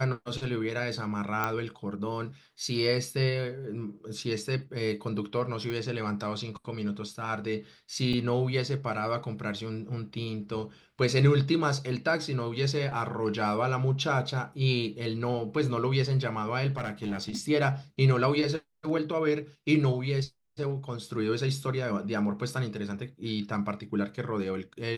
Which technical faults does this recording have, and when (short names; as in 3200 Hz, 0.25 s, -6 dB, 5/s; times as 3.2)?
1.44 pop -14 dBFS
5.7 pop -22 dBFS
8.13 gap 3 ms
16.77–17.4 clipped -27.5 dBFS